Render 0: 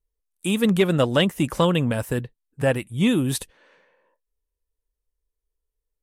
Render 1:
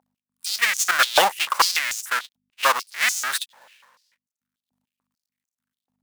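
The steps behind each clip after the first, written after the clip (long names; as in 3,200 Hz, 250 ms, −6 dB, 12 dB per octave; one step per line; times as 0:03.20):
each half-wave held at its own peak
mains hum 50 Hz, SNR 26 dB
high-pass on a step sequencer 6.8 Hz 810–6,500 Hz
level −1 dB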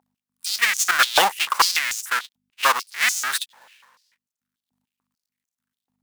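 parametric band 580 Hz −5.5 dB 0.42 octaves
level +1 dB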